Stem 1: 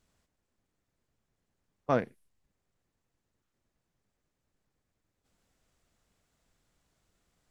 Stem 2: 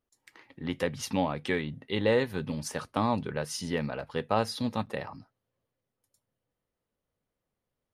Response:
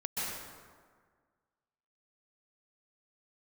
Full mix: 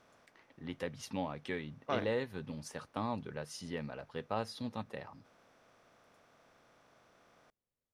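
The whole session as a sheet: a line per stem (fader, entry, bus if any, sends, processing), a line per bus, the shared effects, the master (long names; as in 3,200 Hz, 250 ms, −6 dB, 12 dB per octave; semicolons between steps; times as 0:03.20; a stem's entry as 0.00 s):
−6.0 dB, 0.00 s, no send, compressor on every frequency bin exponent 0.6; low-shelf EQ 400 Hz −10.5 dB
−9.5 dB, 0.00 s, no send, high-shelf EQ 10,000 Hz −5 dB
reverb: not used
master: no processing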